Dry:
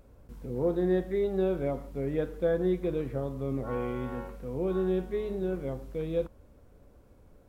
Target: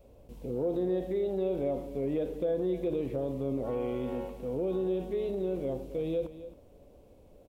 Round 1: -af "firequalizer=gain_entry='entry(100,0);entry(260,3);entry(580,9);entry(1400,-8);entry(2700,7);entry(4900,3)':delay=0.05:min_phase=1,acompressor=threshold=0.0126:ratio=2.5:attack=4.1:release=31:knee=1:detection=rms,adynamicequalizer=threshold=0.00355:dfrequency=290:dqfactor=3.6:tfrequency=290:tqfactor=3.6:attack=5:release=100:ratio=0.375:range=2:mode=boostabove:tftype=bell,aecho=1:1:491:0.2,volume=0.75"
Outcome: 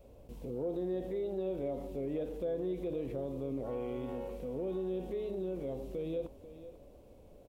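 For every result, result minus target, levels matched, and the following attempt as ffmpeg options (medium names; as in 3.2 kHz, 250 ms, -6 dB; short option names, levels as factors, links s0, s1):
echo 220 ms late; compression: peak gain reduction +5.5 dB
-af "firequalizer=gain_entry='entry(100,0);entry(260,3);entry(580,9);entry(1400,-8);entry(2700,7);entry(4900,3)':delay=0.05:min_phase=1,acompressor=threshold=0.0126:ratio=2.5:attack=4.1:release=31:knee=1:detection=rms,adynamicequalizer=threshold=0.00355:dfrequency=290:dqfactor=3.6:tfrequency=290:tqfactor=3.6:attack=5:release=100:ratio=0.375:range=2:mode=boostabove:tftype=bell,aecho=1:1:271:0.2,volume=0.75"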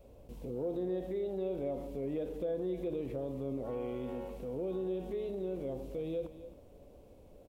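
compression: peak gain reduction +5.5 dB
-af "firequalizer=gain_entry='entry(100,0);entry(260,3);entry(580,9);entry(1400,-8);entry(2700,7);entry(4900,3)':delay=0.05:min_phase=1,acompressor=threshold=0.0355:ratio=2.5:attack=4.1:release=31:knee=1:detection=rms,adynamicequalizer=threshold=0.00355:dfrequency=290:dqfactor=3.6:tfrequency=290:tqfactor=3.6:attack=5:release=100:ratio=0.375:range=2:mode=boostabove:tftype=bell,aecho=1:1:271:0.2,volume=0.75"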